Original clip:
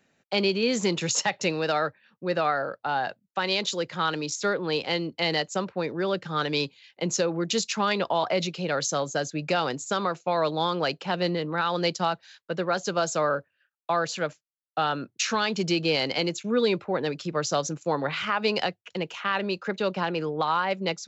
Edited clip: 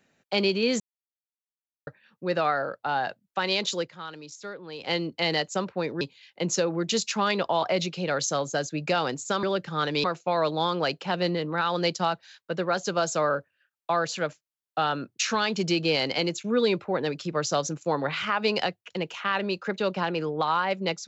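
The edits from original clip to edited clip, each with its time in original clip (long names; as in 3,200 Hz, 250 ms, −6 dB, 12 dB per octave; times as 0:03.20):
0:00.80–0:01.87: silence
0:03.80–0:04.90: duck −12.5 dB, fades 0.12 s
0:06.01–0:06.62: move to 0:10.04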